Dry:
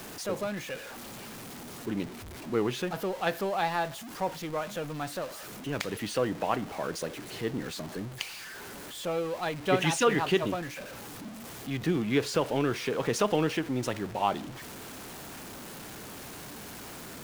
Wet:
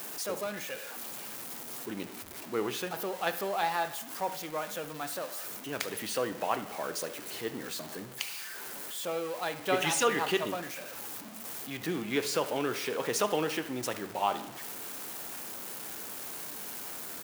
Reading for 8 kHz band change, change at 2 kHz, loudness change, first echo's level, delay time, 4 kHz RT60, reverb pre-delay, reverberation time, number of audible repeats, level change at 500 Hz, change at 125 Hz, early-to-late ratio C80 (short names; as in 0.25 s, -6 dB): +3.0 dB, -1.0 dB, -2.0 dB, -18.0 dB, 72 ms, 0.90 s, 12 ms, 0.95 s, 1, -3.0 dB, -10.0 dB, 15.5 dB